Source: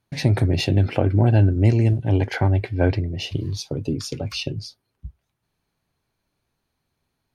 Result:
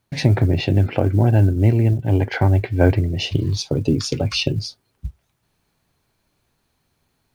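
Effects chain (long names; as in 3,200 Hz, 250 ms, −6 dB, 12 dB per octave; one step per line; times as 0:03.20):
treble cut that deepens with the level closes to 2,500 Hz, closed at −16 dBFS
log-companded quantiser 8 bits
speech leveller within 4 dB 2 s
level +3 dB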